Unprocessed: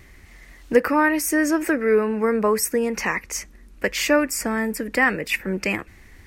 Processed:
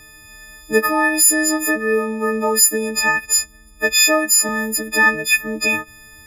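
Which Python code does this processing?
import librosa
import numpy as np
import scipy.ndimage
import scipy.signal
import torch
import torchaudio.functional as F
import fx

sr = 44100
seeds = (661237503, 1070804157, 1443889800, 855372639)

y = fx.freq_snap(x, sr, grid_st=6)
y = fx.highpass(y, sr, hz=160.0, slope=12, at=(4.05, 4.49))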